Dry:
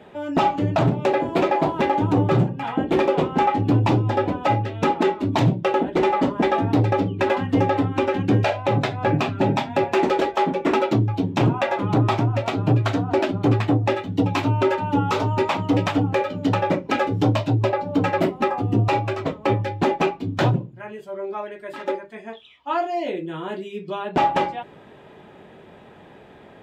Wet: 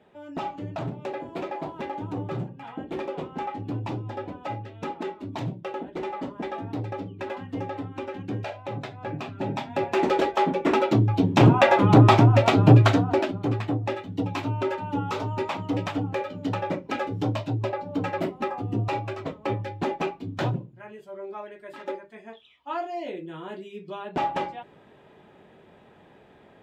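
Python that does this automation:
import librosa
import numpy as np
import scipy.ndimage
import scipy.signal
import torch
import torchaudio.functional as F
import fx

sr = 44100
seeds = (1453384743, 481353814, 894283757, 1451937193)

y = fx.gain(x, sr, db=fx.line((9.16, -13.0), (10.15, -2.0), (10.84, -2.0), (11.61, 5.0), (12.81, 5.0), (13.4, -7.5)))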